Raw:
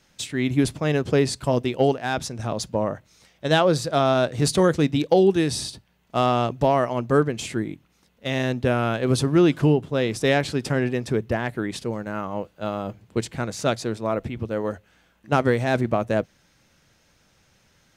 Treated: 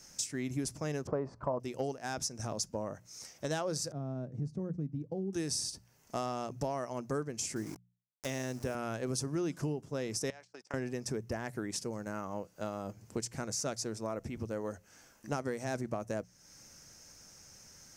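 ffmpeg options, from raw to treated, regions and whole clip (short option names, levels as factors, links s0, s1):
-filter_complex "[0:a]asettb=1/sr,asplit=3[s0][s1][s2];[s0]atrim=end=1.074[s3];[s1]atrim=start=1.07:end=1.6,asetpts=PTS-STARTPTS,afade=t=in:d=0.004:c=qsin,afade=t=out:st=0.526:d=0.004:c=qsin,lowpass=f=1100:t=q:w=3.3,equalizer=f=590:t=o:w=0.34:g=8[s4];[s2]atrim=start=1.596[s5];[s3][s4]acrossfade=d=0.004:c1=hsin:c2=qsin[s6];[s6][s5]acrossfade=d=0.004:c1=qsin:c2=hsin,asettb=1/sr,asplit=3[s7][s8][s9];[s7]atrim=end=3.924[s10];[s8]atrim=start=3.92:end=5.33,asetpts=PTS-STARTPTS,afade=t=in:d=0.004:c=qsin,afade=t=out:st=1.406:d=0.004:c=qsin,acrusher=bits=8:mode=log:mix=0:aa=0.000001,bandpass=f=160:t=q:w=1.7[s11];[s9]atrim=start=5.326[s12];[s10][s11]acrossfade=d=0.004:c1=hsin:c2=qsin[s13];[s13][s12]acrossfade=d=0.004:c1=qsin:c2=hsin,asettb=1/sr,asplit=3[s14][s15][s16];[s14]atrim=end=7.564[s17];[s15]atrim=start=7.56:end=8.75,asetpts=PTS-STARTPTS,afade=t=in:d=0.004:c=qsin,afade=t=out:st=1.186:d=0.004:c=qsin,bandreject=f=60:t=h:w=6,bandreject=f=120:t=h:w=6,bandreject=f=180:t=h:w=6,bandreject=f=240:t=h:w=6,bandreject=f=300:t=h:w=6,bandreject=f=360:t=h:w=6,bandreject=f=420:t=h:w=6,aeval=exprs='val(0)*gte(abs(val(0)),0.0126)':c=same[s18];[s16]atrim=start=8.746[s19];[s17][s18]acrossfade=d=0.004:c1=hsin:c2=qsin[s20];[s20][s19]acrossfade=d=0.004:c1=qsin:c2=hsin,asettb=1/sr,asplit=3[s21][s22][s23];[s21]atrim=end=10.304[s24];[s22]atrim=start=10.3:end=10.74,asetpts=PTS-STARTPTS,afade=t=in:d=0.004:c=qsin,afade=t=out:st=0.436:d=0.004:c=qsin,agate=range=0.0141:threshold=0.0447:ratio=16:release=100:detection=peak,acompressor=threshold=0.0282:ratio=16:attack=3.2:release=140:knee=1:detection=peak,highpass=630,lowpass=5900[s25];[s23]atrim=start=10.736[s26];[s24][s25]acrossfade=d=0.004:c1=hsin:c2=qsin[s27];[s27][s26]acrossfade=d=0.004:c1=qsin:c2=hsin,highshelf=f=4500:t=q:w=3:g=7.5,bandreject=f=60:t=h:w=6,bandreject=f=120:t=h:w=6,bandreject=f=180:t=h:w=6,acompressor=threshold=0.0126:ratio=3"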